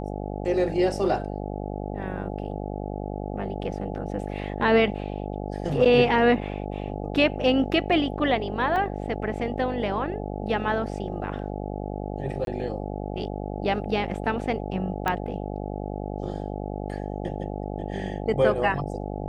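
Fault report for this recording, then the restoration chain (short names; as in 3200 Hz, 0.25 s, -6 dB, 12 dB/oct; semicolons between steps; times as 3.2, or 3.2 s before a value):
buzz 50 Hz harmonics 17 -32 dBFS
8.76 gap 2.4 ms
12.45–12.47 gap 22 ms
15.08 pop -11 dBFS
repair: de-click; de-hum 50 Hz, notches 17; interpolate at 8.76, 2.4 ms; interpolate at 12.45, 22 ms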